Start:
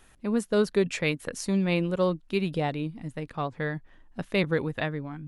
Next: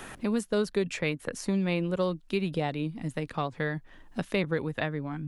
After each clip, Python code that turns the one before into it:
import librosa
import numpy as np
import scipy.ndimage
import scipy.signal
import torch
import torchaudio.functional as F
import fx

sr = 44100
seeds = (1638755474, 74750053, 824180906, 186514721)

y = fx.band_squash(x, sr, depth_pct=70)
y = y * 10.0 ** (-2.5 / 20.0)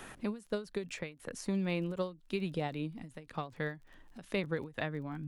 y = fx.dmg_crackle(x, sr, seeds[0], per_s=26.0, level_db=-43.0)
y = fx.end_taper(y, sr, db_per_s=180.0)
y = y * 10.0 ** (-5.5 / 20.0)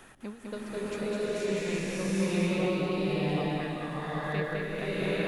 y = x + 10.0 ** (-3.5 / 20.0) * np.pad(x, (int(206 * sr / 1000.0), 0))[:len(x)]
y = fx.rev_bloom(y, sr, seeds[1], attack_ms=810, drr_db=-10.5)
y = y * 10.0 ** (-4.5 / 20.0)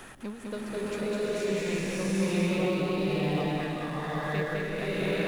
y = fx.law_mismatch(x, sr, coded='mu')